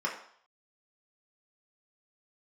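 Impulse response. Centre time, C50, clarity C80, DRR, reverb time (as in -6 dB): 26 ms, 7.0 dB, 10.5 dB, -3.5 dB, 0.60 s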